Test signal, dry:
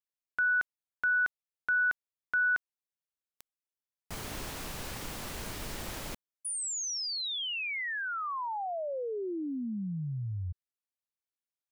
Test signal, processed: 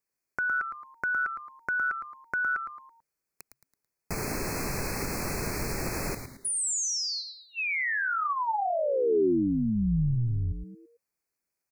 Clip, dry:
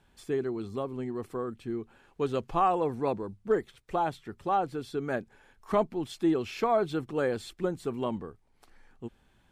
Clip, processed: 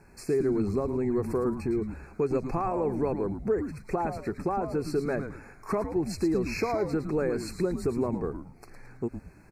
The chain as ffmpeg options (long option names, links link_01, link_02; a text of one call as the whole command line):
ffmpeg -i in.wav -filter_complex "[0:a]asuperstop=centerf=3300:order=20:qfactor=2.1,equalizer=frequency=3400:width=2.5:gain=12,acompressor=threshold=-35dB:ratio=6:attack=3.3:release=214:knee=1:detection=rms,equalizer=frequency=160:width_type=o:width=0.67:gain=4,equalizer=frequency=400:width_type=o:width=0.67:gain=6,equalizer=frequency=4000:width_type=o:width=0.67:gain=-6,asplit=2[link_01][link_02];[link_02]asplit=4[link_03][link_04][link_05][link_06];[link_03]adelay=110,afreqshift=-140,volume=-8dB[link_07];[link_04]adelay=220,afreqshift=-280,volume=-16.4dB[link_08];[link_05]adelay=330,afreqshift=-420,volume=-24.8dB[link_09];[link_06]adelay=440,afreqshift=-560,volume=-33.2dB[link_10];[link_07][link_08][link_09][link_10]amix=inputs=4:normalize=0[link_11];[link_01][link_11]amix=inputs=2:normalize=0,volume=8dB" out.wav